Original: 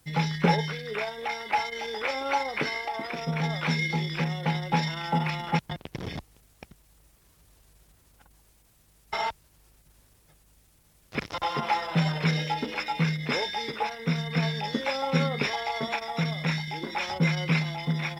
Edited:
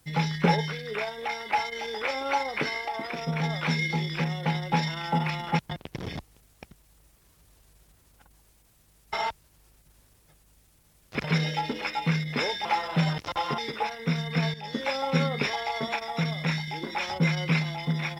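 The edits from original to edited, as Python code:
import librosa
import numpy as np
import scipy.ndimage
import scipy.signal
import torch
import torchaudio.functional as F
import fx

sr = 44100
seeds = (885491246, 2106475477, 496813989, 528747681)

y = fx.edit(x, sr, fx.swap(start_s=11.24, length_s=0.4, other_s=12.17, other_length_s=1.41),
    fx.fade_in_from(start_s=14.54, length_s=0.32, floor_db=-13.0), tone=tone)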